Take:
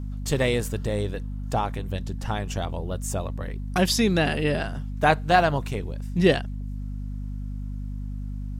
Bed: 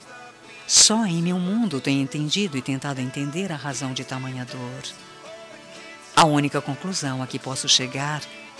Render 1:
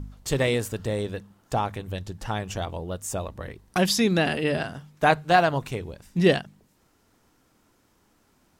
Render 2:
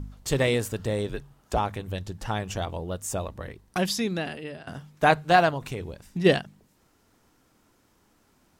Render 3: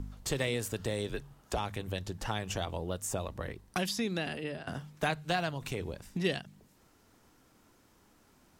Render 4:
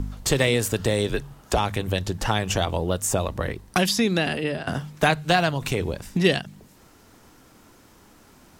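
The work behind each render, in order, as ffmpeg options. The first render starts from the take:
ffmpeg -i in.wav -af "bandreject=frequency=50:width_type=h:width=4,bandreject=frequency=100:width_type=h:width=4,bandreject=frequency=150:width_type=h:width=4,bandreject=frequency=200:width_type=h:width=4,bandreject=frequency=250:width_type=h:width=4" out.wav
ffmpeg -i in.wav -filter_complex "[0:a]asettb=1/sr,asplit=3[link_01][link_02][link_03];[link_01]atrim=end=1.094[link_04];[link_02]atrim=start=1.09:end=1.58,asetpts=PTS-STARTPTS,afade=type=in:duration=0.004:curve=qsin,afade=type=out:start_time=0.486:duration=0.004:curve=qsin,afreqshift=-59[link_05];[link_03]atrim=start=1.576[link_06];[link_04][link_05]acrossfade=duration=0.004:curve1=hsin:curve2=qsin[link_07];[link_07][link_06]acrossfade=duration=0.004:curve1=qsin:curve2=hsin,asplit=3[link_08][link_09][link_10];[link_08]afade=type=out:start_time=5.5:duration=0.02[link_11];[link_09]acompressor=threshold=-26dB:ratio=6:attack=3.2:release=140:knee=1:detection=peak,afade=type=in:start_time=5.5:duration=0.02,afade=type=out:start_time=6.24:duration=0.02[link_12];[link_10]afade=type=in:start_time=6.24:duration=0.02[link_13];[link_11][link_12][link_13]amix=inputs=3:normalize=0,asplit=2[link_14][link_15];[link_14]atrim=end=4.67,asetpts=PTS-STARTPTS,afade=type=out:start_time=3.25:duration=1.42:silence=0.112202[link_16];[link_15]atrim=start=4.67,asetpts=PTS-STARTPTS,afade=type=in:duration=0.004:curve=hsin:silence=0.112202[link_17];[link_16][link_17]concat=n=2:v=0:a=1" out.wav
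ffmpeg -i in.wav -filter_complex "[0:a]acrossover=split=240|2100[link_01][link_02][link_03];[link_01]acompressor=threshold=-38dB:ratio=4[link_04];[link_02]acompressor=threshold=-34dB:ratio=4[link_05];[link_03]acompressor=threshold=-35dB:ratio=4[link_06];[link_04][link_05][link_06]amix=inputs=3:normalize=0" out.wav
ffmpeg -i in.wav -af "volume=11.5dB" out.wav

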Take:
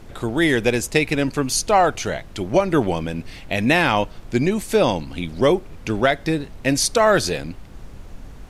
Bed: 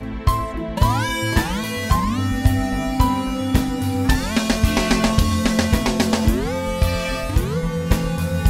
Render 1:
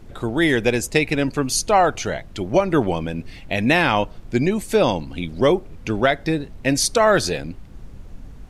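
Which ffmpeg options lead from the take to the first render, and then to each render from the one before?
ffmpeg -i in.wav -af "afftdn=noise_reduction=6:noise_floor=-40" out.wav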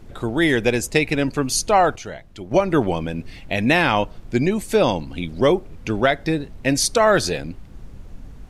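ffmpeg -i in.wav -filter_complex "[0:a]asplit=3[link_01][link_02][link_03];[link_01]atrim=end=1.962[link_04];[link_02]atrim=start=1.958:end=2.512,asetpts=PTS-STARTPTS,volume=-8dB[link_05];[link_03]atrim=start=2.508[link_06];[link_04][link_05]acrossfade=duration=0.004:curve1=hsin:curve2=hsin[link_07];[link_07][link_06]acrossfade=duration=0.004:curve1=hsin:curve2=hsin" out.wav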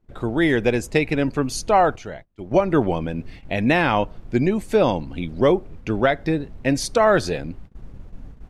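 ffmpeg -i in.wav -af "agate=range=-24dB:threshold=-37dB:ratio=16:detection=peak,highshelf=frequency=3200:gain=-10" out.wav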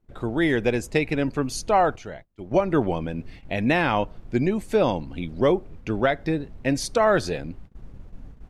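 ffmpeg -i in.wav -af "volume=-3dB" out.wav

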